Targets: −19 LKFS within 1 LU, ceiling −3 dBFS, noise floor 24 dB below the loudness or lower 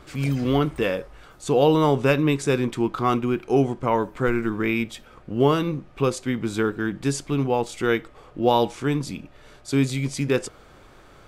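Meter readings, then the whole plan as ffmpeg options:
integrated loudness −23.5 LKFS; sample peak −6.0 dBFS; target loudness −19.0 LKFS
→ -af "volume=4.5dB,alimiter=limit=-3dB:level=0:latency=1"

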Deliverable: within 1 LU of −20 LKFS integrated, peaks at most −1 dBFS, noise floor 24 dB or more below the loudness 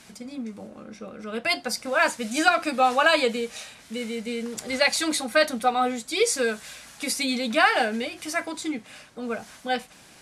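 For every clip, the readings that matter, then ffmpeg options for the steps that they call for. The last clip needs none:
integrated loudness −24.5 LKFS; sample peak −4.0 dBFS; target loudness −20.0 LKFS
→ -af "volume=4.5dB,alimiter=limit=-1dB:level=0:latency=1"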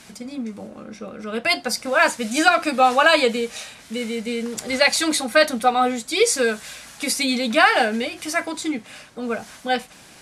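integrated loudness −20.0 LKFS; sample peak −1.0 dBFS; background noise floor −46 dBFS

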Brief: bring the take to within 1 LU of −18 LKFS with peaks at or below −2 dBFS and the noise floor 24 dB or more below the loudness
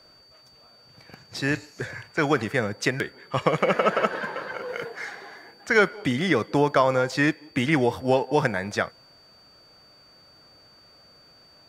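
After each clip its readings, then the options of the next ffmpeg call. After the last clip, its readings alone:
interfering tone 4,600 Hz; level of the tone −53 dBFS; integrated loudness −24.5 LKFS; sample peak −3.5 dBFS; target loudness −18.0 LKFS
→ -af "bandreject=frequency=4600:width=30"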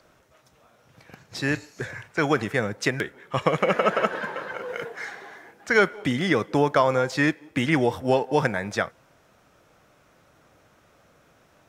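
interfering tone none found; integrated loudness −24.5 LKFS; sample peak −3.5 dBFS; target loudness −18.0 LKFS
→ -af "volume=6.5dB,alimiter=limit=-2dB:level=0:latency=1"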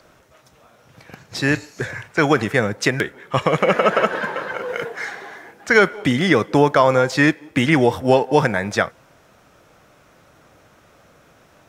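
integrated loudness −18.5 LKFS; sample peak −2.0 dBFS; background noise floor −54 dBFS

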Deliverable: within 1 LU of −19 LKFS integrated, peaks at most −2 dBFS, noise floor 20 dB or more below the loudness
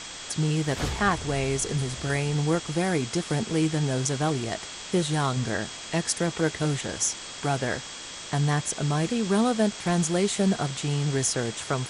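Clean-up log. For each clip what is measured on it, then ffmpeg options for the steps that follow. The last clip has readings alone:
interfering tone 3,300 Hz; level of the tone −45 dBFS; background noise floor −39 dBFS; target noise floor −47 dBFS; integrated loudness −26.5 LKFS; sample peak −10.5 dBFS; target loudness −19.0 LKFS
→ -af "bandreject=frequency=3300:width=30"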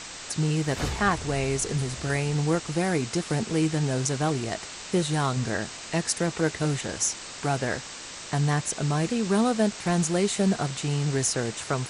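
interfering tone none found; background noise floor −40 dBFS; target noise floor −47 dBFS
→ -af "afftdn=noise_reduction=7:noise_floor=-40"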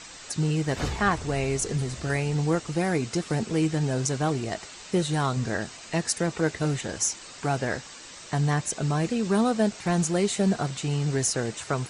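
background noise floor −44 dBFS; target noise floor −47 dBFS
→ -af "afftdn=noise_reduction=6:noise_floor=-44"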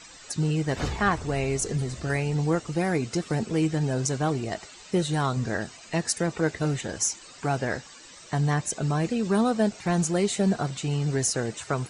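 background noise floor −48 dBFS; integrated loudness −27.0 LKFS; sample peak −10.5 dBFS; target loudness −19.0 LKFS
→ -af "volume=8dB"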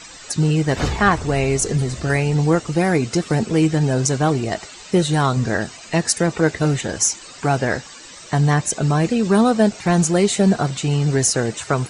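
integrated loudness −19.0 LKFS; sample peak −2.5 dBFS; background noise floor −40 dBFS

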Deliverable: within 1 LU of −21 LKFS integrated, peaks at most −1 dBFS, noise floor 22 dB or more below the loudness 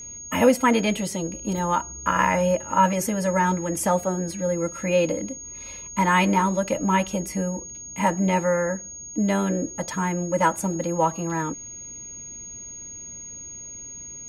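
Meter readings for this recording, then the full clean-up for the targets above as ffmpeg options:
interfering tone 6,600 Hz; level of the tone −36 dBFS; integrated loudness −23.5 LKFS; sample peak −6.0 dBFS; target loudness −21.0 LKFS
→ -af "bandreject=frequency=6600:width=30"
-af "volume=2.5dB"

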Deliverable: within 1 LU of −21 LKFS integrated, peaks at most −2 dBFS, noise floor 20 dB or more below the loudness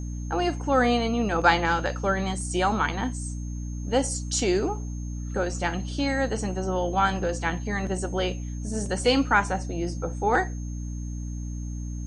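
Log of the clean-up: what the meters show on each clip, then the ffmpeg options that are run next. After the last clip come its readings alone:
mains hum 60 Hz; hum harmonics up to 300 Hz; level of the hum −30 dBFS; interfering tone 6,400 Hz; level of the tone −48 dBFS; integrated loudness −26.5 LKFS; sample peak −4.5 dBFS; target loudness −21.0 LKFS
→ -af "bandreject=frequency=60:width_type=h:width=4,bandreject=frequency=120:width_type=h:width=4,bandreject=frequency=180:width_type=h:width=4,bandreject=frequency=240:width_type=h:width=4,bandreject=frequency=300:width_type=h:width=4"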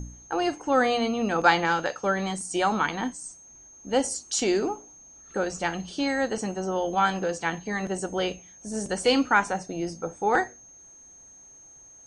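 mains hum none found; interfering tone 6,400 Hz; level of the tone −48 dBFS
→ -af "bandreject=frequency=6400:width=30"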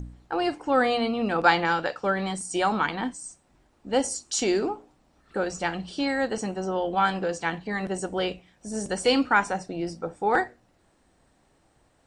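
interfering tone none found; integrated loudness −26.5 LKFS; sample peak −5.0 dBFS; target loudness −21.0 LKFS
→ -af "volume=5.5dB,alimiter=limit=-2dB:level=0:latency=1"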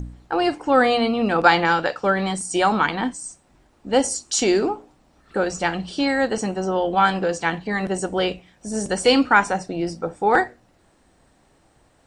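integrated loudness −21.0 LKFS; sample peak −2.0 dBFS; background noise floor −60 dBFS

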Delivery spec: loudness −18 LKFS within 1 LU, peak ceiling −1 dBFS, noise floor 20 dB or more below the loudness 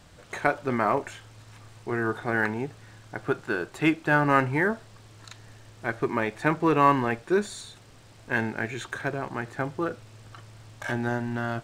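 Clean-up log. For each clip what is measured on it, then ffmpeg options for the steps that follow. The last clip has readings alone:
integrated loudness −27.0 LKFS; sample peak −5.5 dBFS; target loudness −18.0 LKFS
→ -af "volume=9dB,alimiter=limit=-1dB:level=0:latency=1"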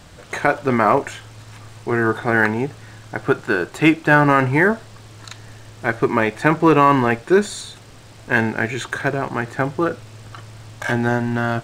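integrated loudness −18.5 LKFS; sample peak −1.0 dBFS; background noise floor −43 dBFS

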